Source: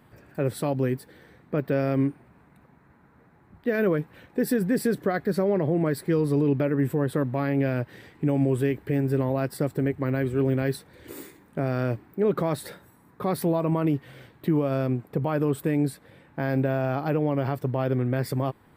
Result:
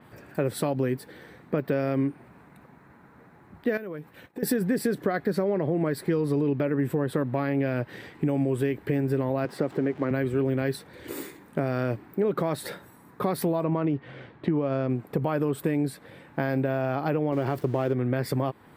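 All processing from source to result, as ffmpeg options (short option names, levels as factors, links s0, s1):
-filter_complex "[0:a]asettb=1/sr,asplit=3[s0][s1][s2];[s0]atrim=end=3.774[s3];[s1]atrim=start=3.77:end=4.43,asetpts=PTS-STARTPTS,afade=t=in:d=0.004:c=qsin,afade=t=out:st=0.656:d=0.004:c=qsin,agate=range=0.0224:threshold=0.00501:ratio=3:release=100:detection=peak,highshelf=f=9300:g=6.5,acompressor=threshold=0.0141:ratio=8:attack=3.2:release=140:knee=1:detection=peak[s4];[s2]atrim=start=4.426[s5];[s3][s4]acrossfade=d=0.004:c1=hsin:c2=qsin[s6];[s6][s5]acrossfade=d=0.004:c1=qsin:c2=hsin,asettb=1/sr,asplit=3[s7][s8][s9];[s7]atrim=end=9.454[s10];[s8]atrim=start=9.45:end=10.11,asetpts=PTS-STARTPTS,afade=t=in:d=0.004:c=qsin,afade=t=out:st=0.656:d=0.004:c=qsin,aeval=exprs='val(0)+0.5*0.01*sgn(val(0))':c=same,highpass=180,aemphasis=mode=reproduction:type=75kf[s11];[s9]atrim=start=10.106[s12];[s10][s11]acrossfade=d=0.004:c1=hsin:c2=qsin[s13];[s13][s12]acrossfade=d=0.004:c1=qsin:c2=hsin,asettb=1/sr,asplit=3[s14][s15][s16];[s14]atrim=end=13.644[s17];[s15]atrim=start=13.64:end=14.9,asetpts=PTS-STARTPTS,afade=t=in:d=0.004:c=qsin,afade=t=out:st=1.256:d=0.004:c=qsin,highshelf=f=5000:g=-10.5,adynamicsmooth=sensitivity=8:basefreq=5600,lowpass=11000[s18];[s16]atrim=start=14.896[s19];[s17][s18]acrossfade=d=0.004:c1=hsin:c2=qsin[s20];[s20][s19]acrossfade=d=0.004:c1=qsin:c2=hsin,asettb=1/sr,asplit=3[s21][s22][s23];[s21]atrim=end=17.324[s24];[s22]atrim=start=17.32:end=17.93,asetpts=PTS-STARTPTS,afade=t=in:d=0.004:c=qsin,afade=t=out:st=0.606:d=0.004:c=qsin,aeval=exprs='val(0)+0.5*0.00944*sgn(val(0))':c=same,agate=range=0.0224:threshold=0.02:ratio=3:release=100:detection=peak,equalizer=f=360:w=4.5:g=7.5[s25];[s23]atrim=start=17.926[s26];[s24][s25]acrossfade=d=0.004:c1=hsin:c2=qsin[s27];[s27][s26]acrossfade=d=0.004:c1=qsin:c2=hsin,lowshelf=f=80:g=-11,acompressor=threshold=0.0398:ratio=4,adynamicequalizer=threshold=0.00112:dfrequency=5300:dqfactor=0.7:tfrequency=5300:tqfactor=0.7:attack=5:release=100:ratio=0.375:range=2:mode=cutabove:tftype=highshelf,volume=1.88"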